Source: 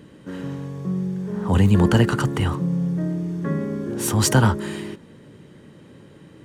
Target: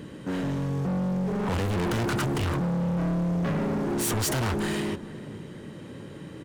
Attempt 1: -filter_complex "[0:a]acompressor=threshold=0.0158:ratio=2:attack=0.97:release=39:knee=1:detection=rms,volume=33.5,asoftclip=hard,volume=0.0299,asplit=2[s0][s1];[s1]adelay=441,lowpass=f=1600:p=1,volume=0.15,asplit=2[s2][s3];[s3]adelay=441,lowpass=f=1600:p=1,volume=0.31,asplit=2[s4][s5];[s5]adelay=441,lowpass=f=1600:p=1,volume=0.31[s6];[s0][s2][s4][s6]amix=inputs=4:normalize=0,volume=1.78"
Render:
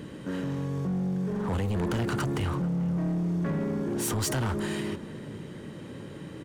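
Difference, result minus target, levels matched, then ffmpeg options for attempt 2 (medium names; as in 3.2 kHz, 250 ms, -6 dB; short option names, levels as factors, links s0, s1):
compression: peak gain reduction +14.5 dB
-filter_complex "[0:a]volume=33.5,asoftclip=hard,volume=0.0299,asplit=2[s0][s1];[s1]adelay=441,lowpass=f=1600:p=1,volume=0.15,asplit=2[s2][s3];[s3]adelay=441,lowpass=f=1600:p=1,volume=0.31,asplit=2[s4][s5];[s5]adelay=441,lowpass=f=1600:p=1,volume=0.31[s6];[s0][s2][s4][s6]amix=inputs=4:normalize=0,volume=1.78"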